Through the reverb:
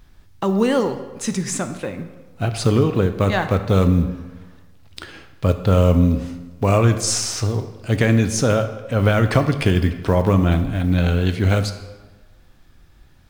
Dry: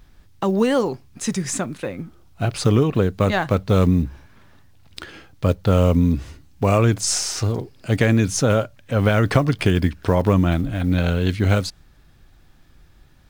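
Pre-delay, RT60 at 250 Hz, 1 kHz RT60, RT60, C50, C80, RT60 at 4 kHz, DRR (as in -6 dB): 7 ms, 1.3 s, 1.3 s, 1.3 s, 10.5 dB, 12.0 dB, 0.90 s, 8.0 dB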